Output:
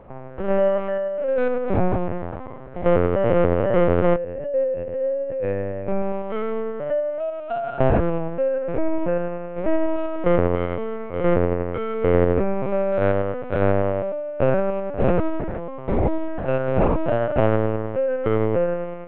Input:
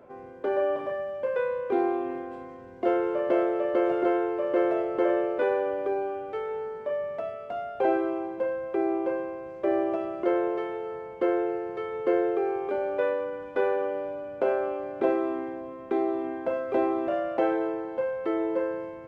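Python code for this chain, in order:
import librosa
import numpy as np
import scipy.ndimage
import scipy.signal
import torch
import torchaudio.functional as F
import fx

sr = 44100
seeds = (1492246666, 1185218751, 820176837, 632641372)

y = fx.spec_steps(x, sr, hold_ms=100)
y = fx.vowel_filter(y, sr, vowel='e', at=(4.15, 5.87), fade=0.02)
y = fx.lpc_vocoder(y, sr, seeds[0], excitation='pitch_kept', order=8)
y = F.gain(torch.from_numpy(y), 8.0).numpy()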